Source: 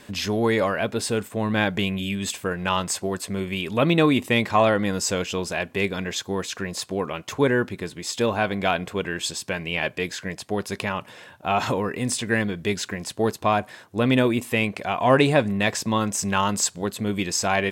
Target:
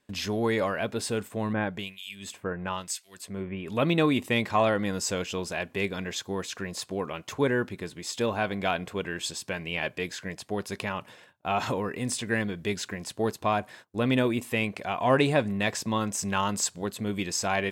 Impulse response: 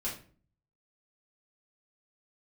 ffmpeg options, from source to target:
-filter_complex "[0:a]agate=range=-20dB:threshold=-43dB:ratio=16:detection=peak,asettb=1/sr,asplit=3[link_01][link_02][link_03];[link_01]atrim=end=1.534[link_04];[link_02]atrim=start=1.53:end=3.68,asetpts=PTS-STARTPTS,afade=type=in:duration=0.004:curve=qsin,afade=type=out:start_time=2.146:duration=0.004:curve=qsin,acrossover=split=2100[link_05][link_06];[link_05]aeval=exprs='val(0)*(1-1/2+1/2*cos(2*PI*1*n/s))':channel_layout=same[link_07];[link_06]aeval=exprs='val(0)*(1-1/2-1/2*cos(2*PI*1*n/s))':channel_layout=same[link_08];[link_07][link_08]amix=inputs=2:normalize=0[link_09];[link_03]atrim=start=3.676[link_10];[link_04][link_09]acrossfade=duration=0.004:curve1=hsin:curve2=qsin[link_11];[link_11][link_10]acrossfade=duration=0.004:curve1=qsin:curve2=hsin,volume=-5dB"

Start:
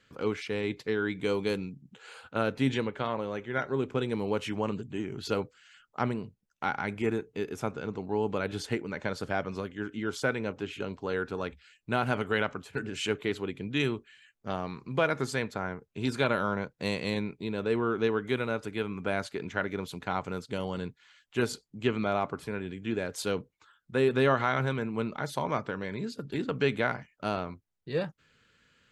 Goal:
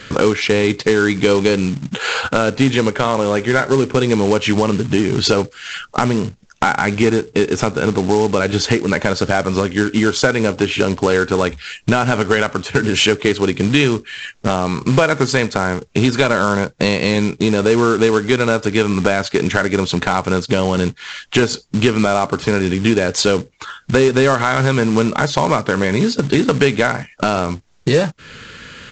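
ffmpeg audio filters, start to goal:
ffmpeg -i in.wav -af "acompressor=threshold=-43dB:ratio=4,apsyclip=33dB,aresample=16000,acrusher=bits=4:mode=log:mix=0:aa=0.000001,aresample=44100,volume=-3.5dB" out.wav

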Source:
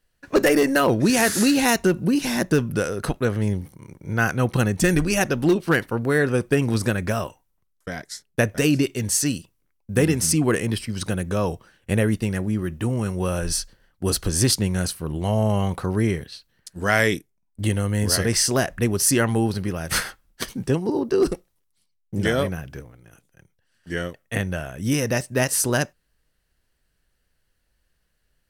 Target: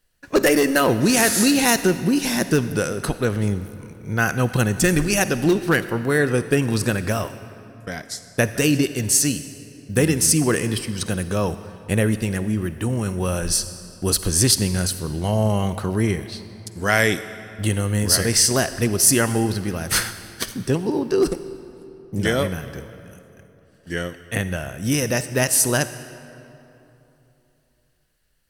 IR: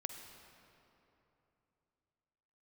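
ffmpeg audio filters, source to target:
-filter_complex "[0:a]asplit=2[link_01][link_02];[1:a]atrim=start_sample=2205,highshelf=frequency=3000:gain=9.5[link_03];[link_02][link_03]afir=irnorm=-1:irlink=0,volume=-2dB[link_04];[link_01][link_04]amix=inputs=2:normalize=0,volume=-3.5dB"

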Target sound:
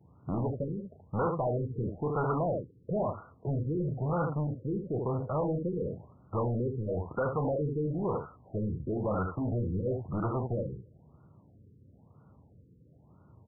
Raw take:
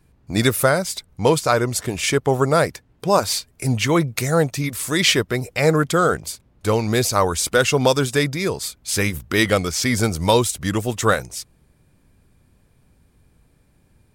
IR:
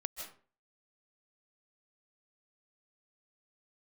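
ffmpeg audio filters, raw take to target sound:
-filter_complex "[0:a]aeval=exprs='0.299*(abs(mod(val(0)/0.299+3,4)-2)-1)':channel_layout=same,acompressor=threshold=-20dB:ratio=6,asplit=2[link_01][link_02];[link_02]aecho=0:1:35|79:0.316|0.422[link_03];[link_01][link_03]amix=inputs=2:normalize=0,asetrate=46305,aresample=44100,highpass=frequency=91:width=0.5412,highpass=frequency=91:width=1.3066,lowshelf=frequency=140:gain=11,asoftclip=type=tanh:threshold=-24dB,tiltshelf=frequency=1100:gain=-8.5,afftfilt=real='re*lt(b*sr/1024,500*pow(1500/500,0.5+0.5*sin(2*PI*1*pts/sr)))':imag='im*lt(b*sr/1024,500*pow(1500/500,0.5+0.5*sin(2*PI*1*pts/sr)))':win_size=1024:overlap=0.75,volume=4dB"

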